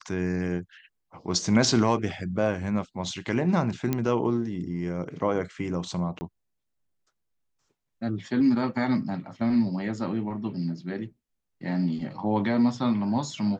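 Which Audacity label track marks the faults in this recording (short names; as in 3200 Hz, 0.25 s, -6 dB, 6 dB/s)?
3.930000	3.930000	pop -12 dBFS
6.190000	6.210000	gap 20 ms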